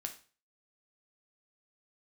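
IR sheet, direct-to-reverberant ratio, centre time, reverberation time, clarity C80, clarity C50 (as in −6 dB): 4.0 dB, 11 ms, 0.40 s, 17.0 dB, 11.5 dB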